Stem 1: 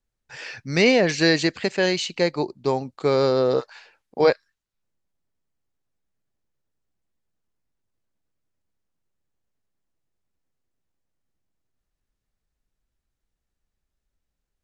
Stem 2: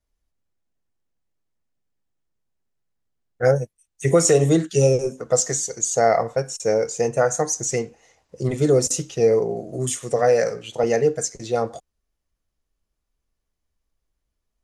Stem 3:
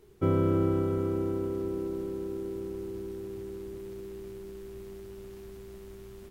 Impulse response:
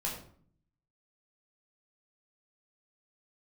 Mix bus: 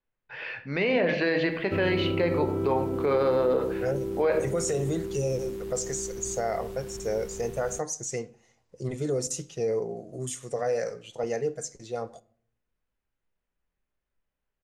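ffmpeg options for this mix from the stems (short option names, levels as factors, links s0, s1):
-filter_complex "[0:a]lowpass=f=3000:w=0.5412,lowpass=f=3000:w=1.3066,lowshelf=f=160:g=-11.5,volume=0.75,asplit=2[s0][s1];[s1]volume=0.531[s2];[1:a]adelay=400,volume=0.158,asplit=2[s3][s4];[s4]volume=0.168[s5];[2:a]adelay=1500,volume=0.944[s6];[s3][s6]amix=inputs=2:normalize=0,dynaudnorm=f=630:g=11:m=2.11,alimiter=limit=0.0944:level=0:latency=1:release=22,volume=1[s7];[3:a]atrim=start_sample=2205[s8];[s2][s5]amix=inputs=2:normalize=0[s9];[s9][s8]afir=irnorm=-1:irlink=0[s10];[s0][s7][s10]amix=inputs=3:normalize=0,alimiter=limit=0.168:level=0:latency=1:release=55"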